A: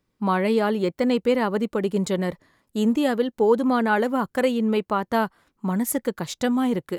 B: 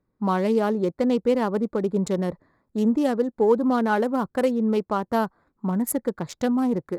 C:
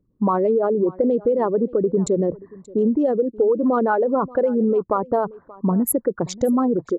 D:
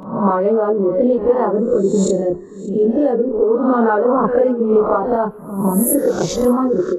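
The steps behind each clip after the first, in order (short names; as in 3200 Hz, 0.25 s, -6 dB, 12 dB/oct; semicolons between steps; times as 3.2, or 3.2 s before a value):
Wiener smoothing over 15 samples; dynamic EQ 2200 Hz, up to -5 dB, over -40 dBFS, Q 1.1
formant sharpening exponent 2; compressor, threshold -23 dBFS, peak gain reduction 8.5 dB; echo 0.58 s -21.5 dB; gain +7.5 dB
spectral swells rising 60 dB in 0.63 s; chorus voices 6, 0.49 Hz, delay 28 ms, depth 3.3 ms; resonator 71 Hz, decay 0.47 s, harmonics all, mix 40%; gain +9 dB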